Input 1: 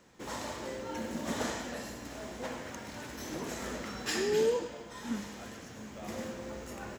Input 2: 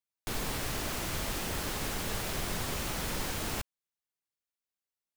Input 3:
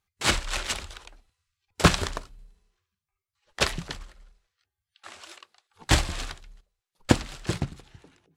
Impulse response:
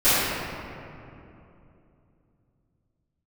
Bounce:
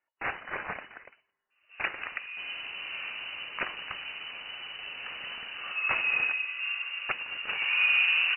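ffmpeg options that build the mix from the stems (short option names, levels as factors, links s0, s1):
-filter_complex "[0:a]lowpass=f=2000:w=0.5412,lowpass=f=2000:w=1.3066,adelay=1500,volume=0.708,afade=t=in:st=5.44:d=0.69:silence=0.421697,afade=t=in:st=7.17:d=0.67:silence=0.251189,asplit=2[s0][s1];[s1]volume=0.668[s2];[1:a]adelay=2100,volume=0.398[s3];[2:a]bandpass=f=1300:t=q:w=0.51:csg=0,acompressor=threshold=0.0355:ratio=16,volume=1.19[s4];[3:a]atrim=start_sample=2205[s5];[s2][s5]afir=irnorm=-1:irlink=0[s6];[s0][s3][s4][s6]amix=inputs=4:normalize=0,lowpass=f=2600:t=q:w=0.5098,lowpass=f=2600:t=q:w=0.6013,lowpass=f=2600:t=q:w=0.9,lowpass=f=2600:t=q:w=2.563,afreqshift=-3000"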